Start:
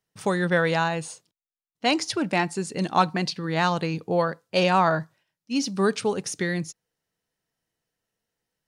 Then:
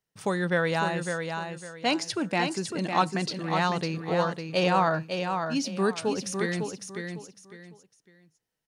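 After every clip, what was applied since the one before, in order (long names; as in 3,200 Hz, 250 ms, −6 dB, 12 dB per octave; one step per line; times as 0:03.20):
repeating echo 554 ms, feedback 27%, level −6 dB
level −3.5 dB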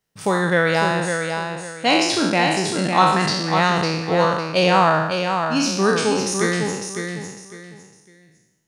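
peak hold with a decay on every bin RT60 0.99 s
level +6 dB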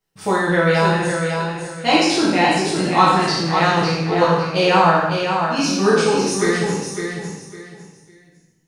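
rectangular room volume 48 cubic metres, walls mixed, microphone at 1.1 metres
level −5 dB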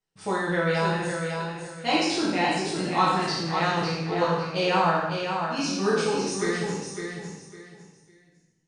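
elliptic low-pass filter 9,100 Hz, stop band 40 dB
level −7.5 dB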